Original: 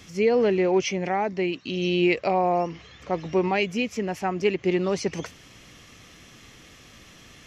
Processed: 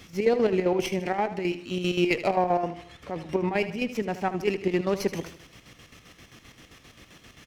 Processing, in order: square tremolo 7.6 Hz, depth 60%, duty 55%; 2.56–3.89 s: low-pass that closes with the level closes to 2.2 kHz, closed at -22 dBFS; feedback delay 77 ms, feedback 46%, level -13 dB; sliding maximum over 3 samples

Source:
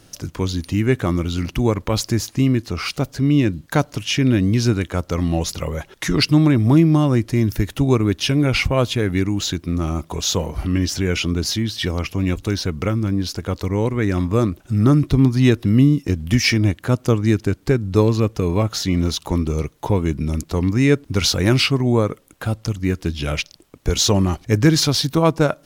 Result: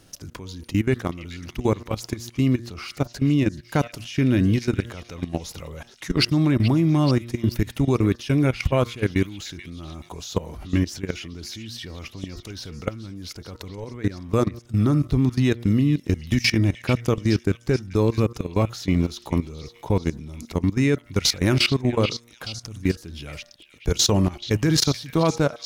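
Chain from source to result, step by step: de-hum 117.8 Hz, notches 17; level held to a coarse grid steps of 18 dB; repeats whose band climbs or falls 431 ms, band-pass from 2.7 kHz, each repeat 0.7 oct, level -8.5 dB

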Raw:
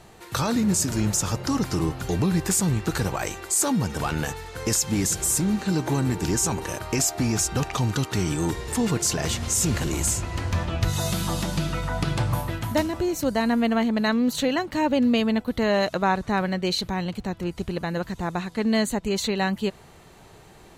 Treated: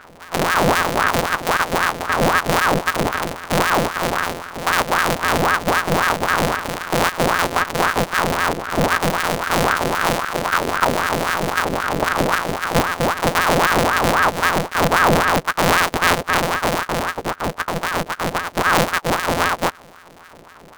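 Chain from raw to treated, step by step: sorted samples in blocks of 256 samples; ring modulator with a swept carrier 890 Hz, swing 65%, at 3.8 Hz; trim +8.5 dB

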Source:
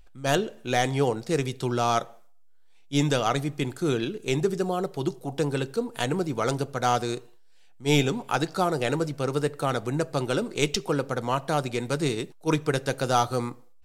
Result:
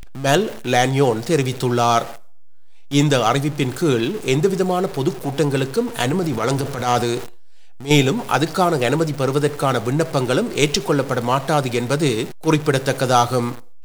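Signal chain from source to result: jump at every zero crossing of -36 dBFS; 6.00–7.91 s: transient shaper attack -12 dB, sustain +3 dB; trim +7 dB

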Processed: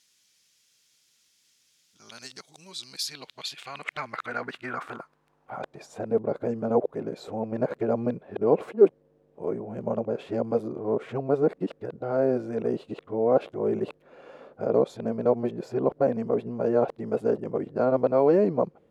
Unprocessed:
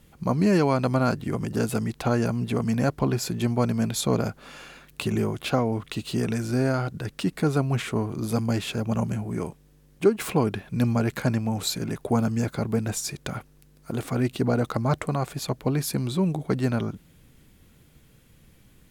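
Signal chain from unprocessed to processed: reverse the whole clip; band-pass sweep 5.5 kHz -> 510 Hz, 2.70–6.17 s; trim +7 dB

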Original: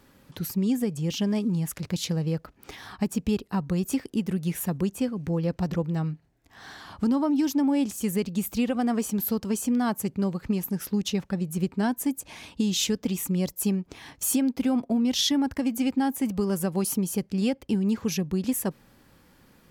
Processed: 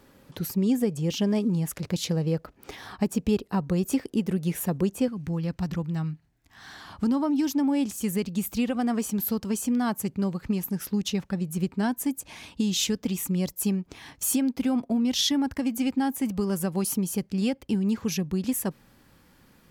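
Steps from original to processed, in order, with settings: peaking EQ 490 Hz +4 dB 1.4 oct, from 5.08 s -8.5 dB, from 6.73 s -2 dB

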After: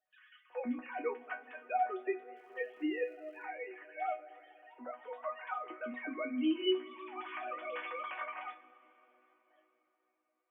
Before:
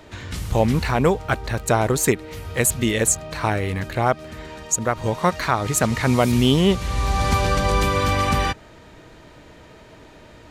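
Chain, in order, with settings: formants replaced by sine waves; gate with hold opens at -40 dBFS; bass shelf 400 Hz -5.5 dB; harmonic-percussive split percussive -5 dB; dynamic bell 2.3 kHz, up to +4 dB, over -45 dBFS, Q 4.7; chord resonator B3 major, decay 0.22 s; 2.35–3.44 s: crackle 360 per s -66 dBFS; reverberation RT60 4.5 s, pre-delay 53 ms, DRR 18 dB; Opus 64 kbps 48 kHz

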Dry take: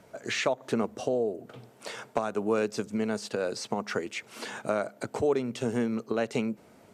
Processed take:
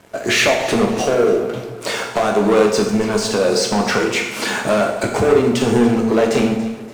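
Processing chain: waveshaping leveller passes 3; on a send: echo whose repeats swap between lows and highs 143 ms, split 960 Hz, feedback 62%, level -11 dB; on the sum: plate-style reverb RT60 0.9 s, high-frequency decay 0.9×, DRR 0.5 dB; trim +4 dB

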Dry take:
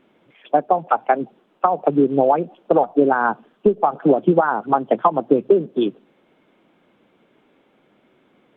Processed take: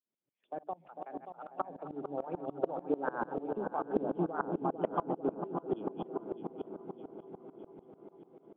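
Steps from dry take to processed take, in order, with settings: backward echo that repeats 297 ms, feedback 69%, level -10 dB; Doppler pass-by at 3.81 s, 9 m/s, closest 4.7 m; compression 2:1, threshold -42 dBFS, peak gain reduction 16.5 dB; bass shelf 310 Hz +11 dB; hum notches 50/100/150/200/250/300 Hz; feedback echo behind a low-pass 449 ms, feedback 70%, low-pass 880 Hz, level -6.5 dB; gate with hold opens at -54 dBFS; bass shelf 130 Hz -10.5 dB; sawtooth tremolo in dB swelling 6.8 Hz, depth 23 dB; trim +4 dB

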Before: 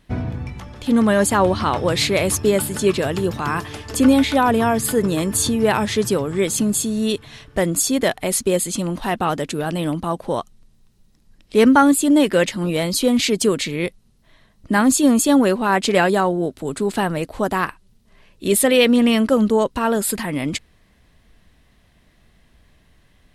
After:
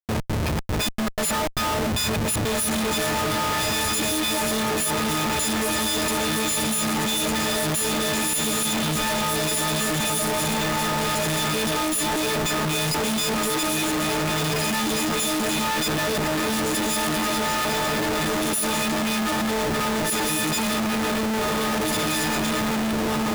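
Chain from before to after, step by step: partials quantised in pitch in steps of 6 st; compression 12:1, threshold -22 dBFS, peak gain reduction 21 dB; trance gate "xx.xxx.xx.x.x" 153 bpm -24 dB; on a send: echo that smears into a reverb 1795 ms, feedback 58%, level -3.5 dB; on the sum: Schmitt trigger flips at -33 dBFS; trim +2.5 dB

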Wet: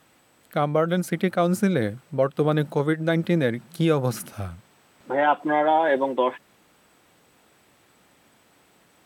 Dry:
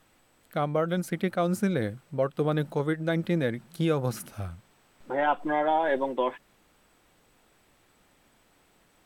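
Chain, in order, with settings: high-pass 90 Hz; trim +5 dB

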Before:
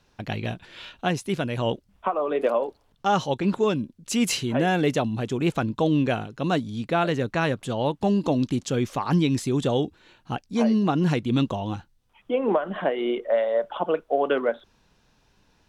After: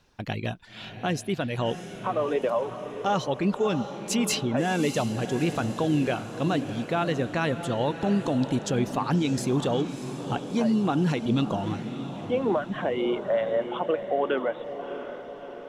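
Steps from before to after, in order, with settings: reverb removal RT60 0.58 s; peak limiter -16.5 dBFS, peak gain reduction 5.5 dB; on a send: echo that smears into a reverb 647 ms, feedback 57%, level -10 dB

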